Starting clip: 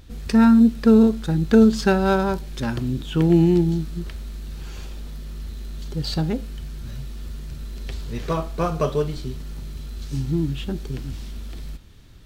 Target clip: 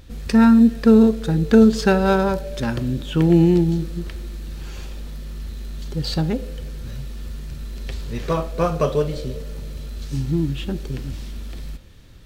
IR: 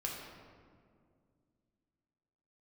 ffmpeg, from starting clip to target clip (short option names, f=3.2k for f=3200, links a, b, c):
-filter_complex "[0:a]asplit=2[a][b];[b]asplit=3[c][d][e];[c]bandpass=f=530:t=q:w=8,volume=0dB[f];[d]bandpass=f=1.84k:t=q:w=8,volume=-6dB[g];[e]bandpass=f=2.48k:t=q:w=8,volume=-9dB[h];[f][g][h]amix=inputs=3:normalize=0[i];[1:a]atrim=start_sample=2205[j];[i][j]afir=irnorm=-1:irlink=0,volume=-3.5dB[k];[a][k]amix=inputs=2:normalize=0,volume=1.5dB"